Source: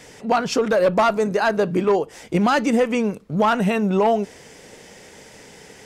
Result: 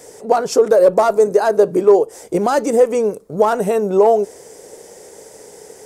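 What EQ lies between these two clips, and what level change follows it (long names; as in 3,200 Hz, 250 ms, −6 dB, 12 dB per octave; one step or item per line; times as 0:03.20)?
drawn EQ curve 240 Hz 0 dB, 420 Hz +14 dB, 2,800 Hz −5 dB, 8,600 Hz +14 dB
−4.5 dB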